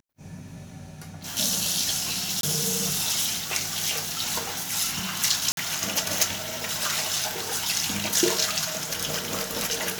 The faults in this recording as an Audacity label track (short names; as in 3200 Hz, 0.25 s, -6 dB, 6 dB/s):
2.410000	2.430000	gap 22 ms
5.520000	5.570000	gap 52 ms